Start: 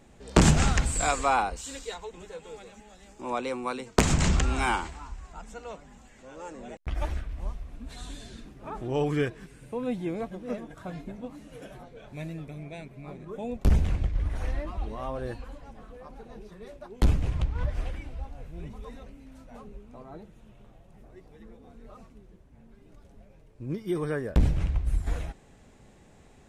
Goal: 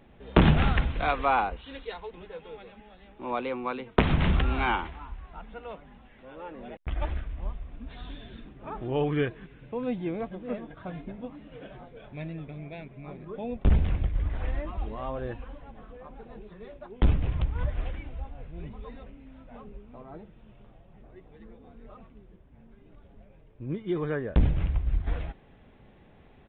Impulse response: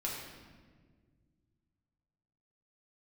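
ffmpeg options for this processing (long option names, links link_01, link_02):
-af "aresample=8000,aresample=44100"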